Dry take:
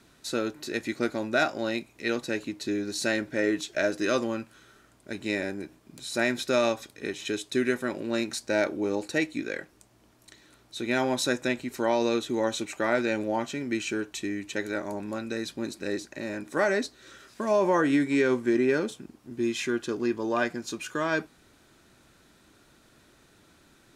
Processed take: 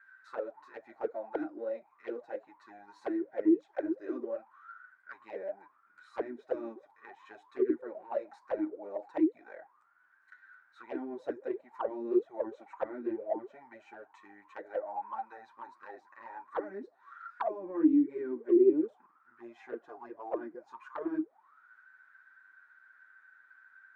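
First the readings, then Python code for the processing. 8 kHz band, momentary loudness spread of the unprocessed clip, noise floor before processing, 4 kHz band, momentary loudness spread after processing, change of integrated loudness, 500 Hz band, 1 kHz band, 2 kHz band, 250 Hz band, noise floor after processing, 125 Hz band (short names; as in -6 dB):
under -35 dB, 11 LU, -60 dBFS, under -30 dB, 23 LU, -5.5 dB, -6.5 dB, -8.5 dB, -19.5 dB, -4.5 dB, -68 dBFS, under -20 dB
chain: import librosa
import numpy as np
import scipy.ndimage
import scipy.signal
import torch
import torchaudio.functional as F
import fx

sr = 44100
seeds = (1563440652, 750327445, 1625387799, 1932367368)

y = fx.band_shelf(x, sr, hz=1300.0, db=9.5, octaves=1.7)
y = fx.auto_wah(y, sr, base_hz=310.0, top_hz=1600.0, q=20.0, full_db=-18.0, direction='down')
y = fx.env_flanger(y, sr, rest_ms=10.6, full_db=-29.0)
y = F.gain(torch.from_numpy(y), 9.0).numpy()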